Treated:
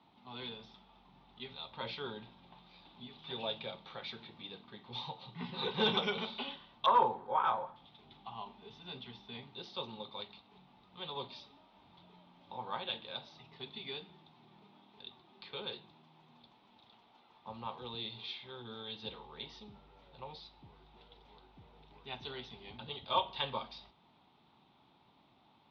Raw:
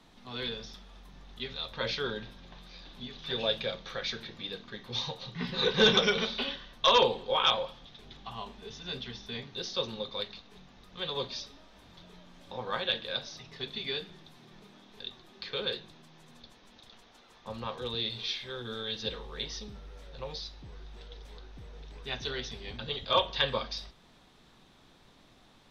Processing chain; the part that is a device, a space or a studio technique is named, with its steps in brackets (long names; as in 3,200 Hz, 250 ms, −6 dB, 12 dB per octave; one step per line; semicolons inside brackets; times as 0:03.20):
0:06.86–0:07.76: high shelf with overshoot 2,200 Hz −10.5 dB, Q 3
guitar cabinet (loudspeaker in its box 100–3,800 Hz, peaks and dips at 500 Hz −6 dB, 870 Hz +9 dB, 1,700 Hz −10 dB)
level −6.5 dB